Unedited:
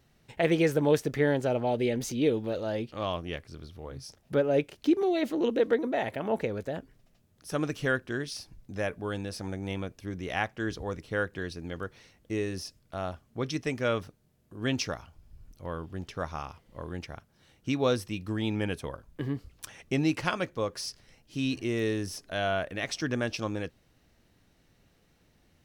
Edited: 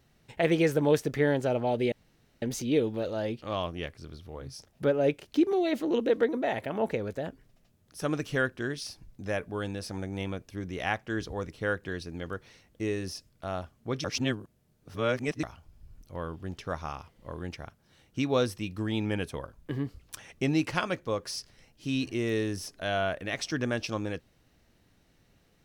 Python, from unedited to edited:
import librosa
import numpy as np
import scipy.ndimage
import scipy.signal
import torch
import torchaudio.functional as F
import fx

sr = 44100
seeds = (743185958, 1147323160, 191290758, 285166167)

y = fx.edit(x, sr, fx.insert_room_tone(at_s=1.92, length_s=0.5),
    fx.reverse_span(start_s=13.54, length_s=1.39), tone=tone)